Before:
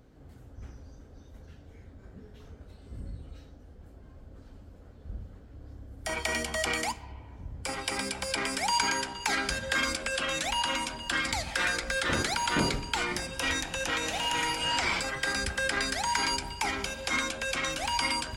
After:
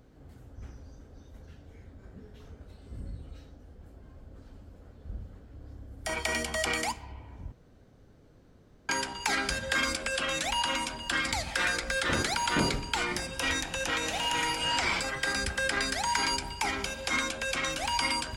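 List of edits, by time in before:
0:07.52–0:08.89: fill with room tone

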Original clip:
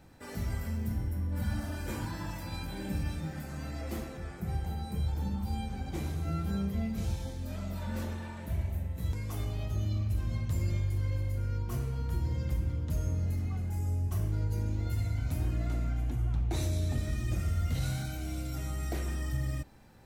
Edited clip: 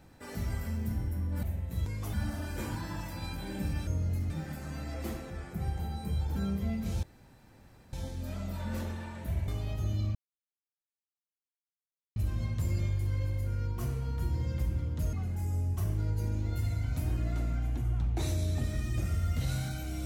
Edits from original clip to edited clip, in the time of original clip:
0:05.23–0:06.48: remove
0:07.15: splice in room tone 0.90 s
0:08.70–0:09.40: move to 0:01.43
0:10.07: splice in silence 2.01 s
0:13.04–0:13.47: move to 0:03.17

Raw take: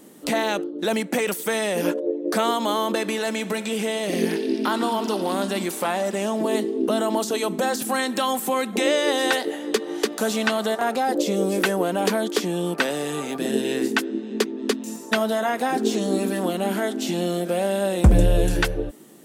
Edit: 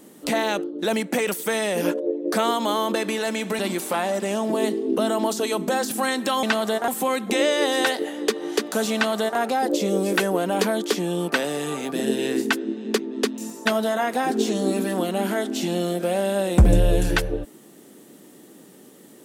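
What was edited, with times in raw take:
0:03.59–0:05.50: remove
0:10.40–0:10.85: duplicate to 0:08.34

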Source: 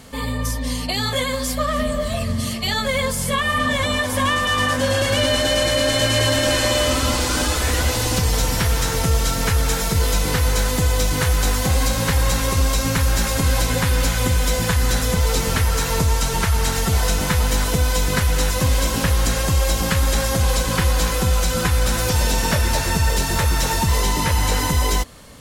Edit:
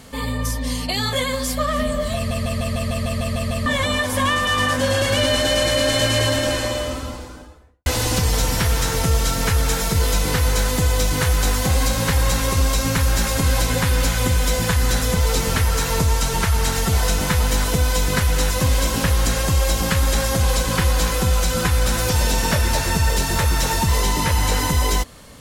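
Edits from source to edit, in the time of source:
0:02.16: stutter in place 0.15 s, 10 plays
0:05.98–0:07.86: fade out and dull

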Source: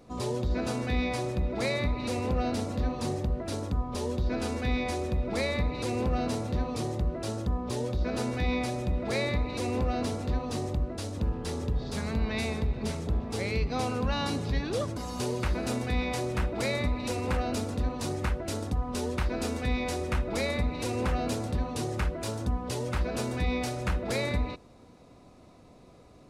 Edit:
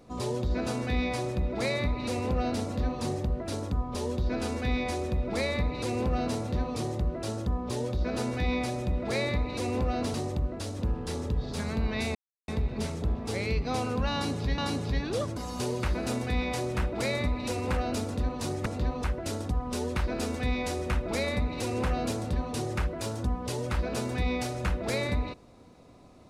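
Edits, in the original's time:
0:10.14–0:10.52: move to 0:18.26
0:12.53: splice in silence 0.33 s
0:14.18–0:14.63: repeat, 2 plays

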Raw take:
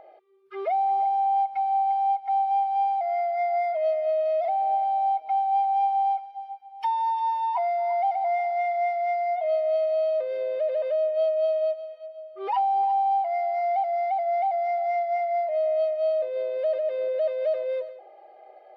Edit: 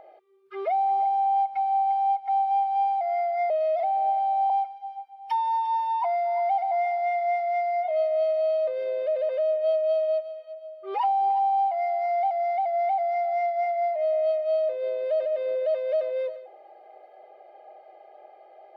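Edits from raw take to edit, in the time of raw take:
0:03.50–0:04.15: remove
0:05.15–0:06.03: remove

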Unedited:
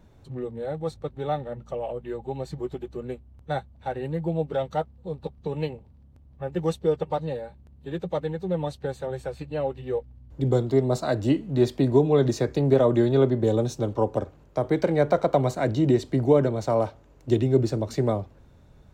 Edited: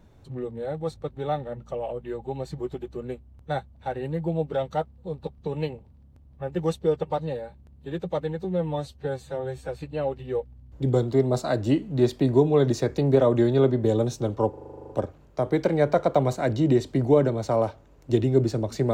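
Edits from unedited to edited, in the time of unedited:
0:08.44–0:09.27: time-stretch 1.5×
0:14.08: stutter 0.04 s, 11 plays

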